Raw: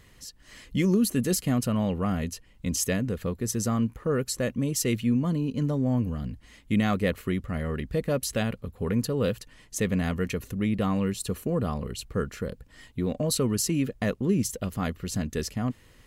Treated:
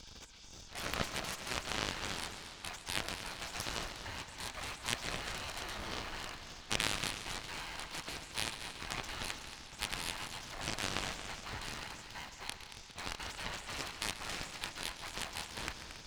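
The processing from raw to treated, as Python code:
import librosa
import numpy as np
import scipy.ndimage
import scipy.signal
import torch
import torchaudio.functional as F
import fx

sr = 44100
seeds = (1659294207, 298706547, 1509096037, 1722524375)

p1 = fx.bin_compress(x, sr, power=0.4)
p2 = scipy.signal.sosfilt(scipy.signal.butter(4, 4400.0, 'lowpass', fs=sr, output='sos'), p1)
p3 = fx.spec_gate(p2, sr, threshold_db=-25, keep='weak')
p4 = fx.low_shelf(p3, sr, hz=220.0, db=11.5)
p5 = fx.schmitt(p4, sr, flips_db=-43.0)
p6 = p4 + (p5 * librosa.db_to_amplitude(-11.0))
p7 = fx.cheby_harmonics(p6, sr, harmonics=(4, 7), levels_db=(-16, -14), full_scale_db=-13.0)
p8 = p7 + fx.echo_single(p7, sr, ms=228, db=-11.5, dry=0)
p9 = fx.echo_warbled(p8, sr, ms=138, feedback_pct=78, rate_hz=2.8, cents=57, wet_db=-13.0)
y = p9 * librosa.db_to_amplitude(3.5)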